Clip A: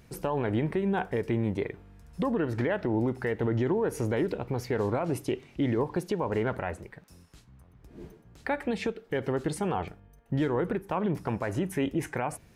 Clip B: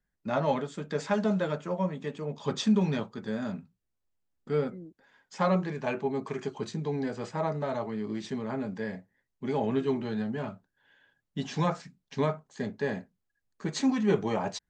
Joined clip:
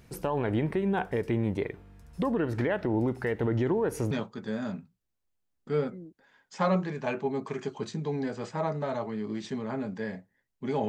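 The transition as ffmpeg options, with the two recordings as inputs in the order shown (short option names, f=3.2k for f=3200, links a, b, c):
-filter_complex "[0:a]apad=whole_dur=10.88,atrim=end=10.88,atrim=end=4.112[a];[1:a]atrim=start=2.908:end=9.68[b];[a][b]acrossfade=d=0.004:c1=hsin:c2=hsin"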